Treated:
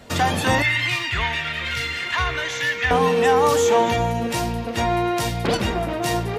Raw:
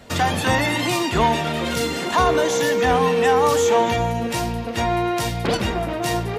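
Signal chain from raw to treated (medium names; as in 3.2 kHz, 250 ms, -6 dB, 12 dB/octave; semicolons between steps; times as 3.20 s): 0.62–2.91 s: FFT filter 120 Hz 0 dB, 190 Hz -18 dB, 830 Hz -12 dB, 2 kHz +7 dB, 8.9 kHz -11 dB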